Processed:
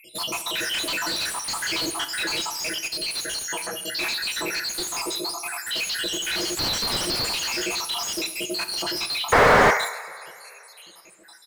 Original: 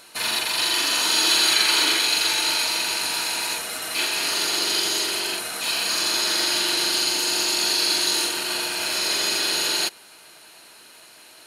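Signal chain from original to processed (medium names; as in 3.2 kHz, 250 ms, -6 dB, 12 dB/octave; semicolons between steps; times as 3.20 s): random holes in the spectrogram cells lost 81%; comb 6 ms, depth 63%; overload inside the chain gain 28 dB; 6.57–7.28 s: resonant high shelf 3.4 kHz +10.5 dB, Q 3; 9.32–9.71 s: painted sound noise 400–2300 Hz -15 dBFS; reverberation, pre-delay 3 ms, DRR 8 dB; slew-rate limiter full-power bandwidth 150 Hz; trim +4.5 dB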